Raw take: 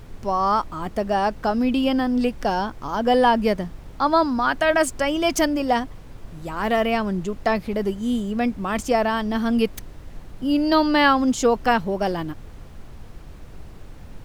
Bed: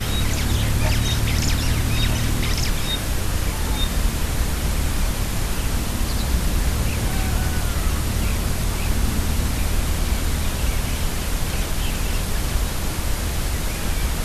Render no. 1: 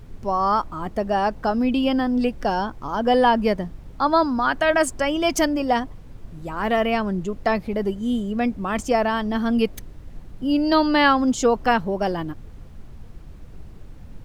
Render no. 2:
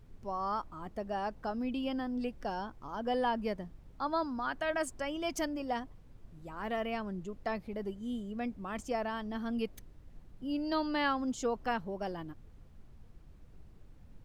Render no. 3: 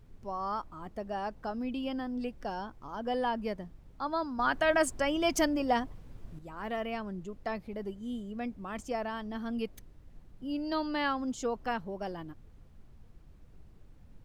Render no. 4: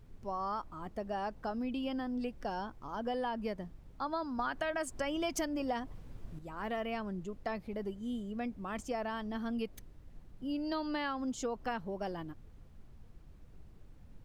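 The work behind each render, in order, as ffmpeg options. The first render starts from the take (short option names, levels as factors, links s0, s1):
-af "afftdn=nr=6:nf=-41"
-af "volume=0.188"
-filter_complex "[0:a]asettb=1/sr,asplit=3[s0][s1][s2];[s0]atrim=end=4.394[s3];[s1]atrim=start=4.39:end=6.39,asetpts=PTS-STARTPTS,afade=t=in:d=0.004:c=qsin,afade=t=out:st=1.996:d=0.004:c=qsin,acontrast=82[s4];[s2]atrim=start=6.386[s5];[s3][s4]acrossfade=d=0.004:c1=hsin:c2=qsin[s6];[s6][s5]acrossfade=d=0.004:c1=qsin:c2=hsin"
-af "acompressor=threshold=0.0251:ratio=6"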